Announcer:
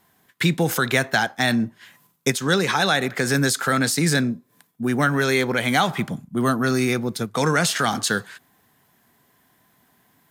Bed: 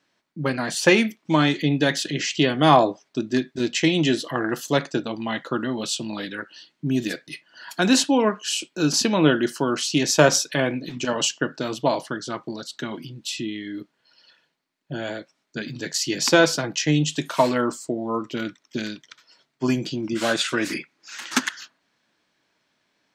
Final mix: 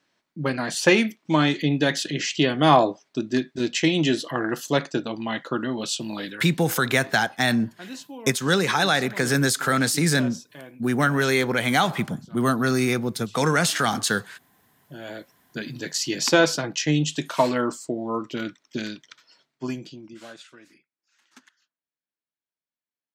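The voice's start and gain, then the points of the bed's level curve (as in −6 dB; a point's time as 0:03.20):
6.00 s, −1.0 dB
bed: 0:06.29 −1 dB
0:06.63 −20.5 dB
0:14.58 −20.5 dB
0:15.26 −1.5 dB
0:19.37 −1.5 dB
0:20.80 −30.5 dB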